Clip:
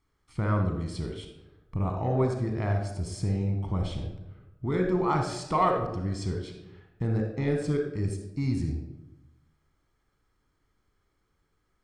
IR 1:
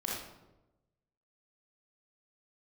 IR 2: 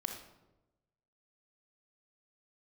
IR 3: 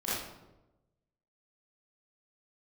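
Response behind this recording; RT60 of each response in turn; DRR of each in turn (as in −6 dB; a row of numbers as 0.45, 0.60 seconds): 2; 1.0, 1.0, 1.0 seconds; −5.0, 3.0, −11.5 decibels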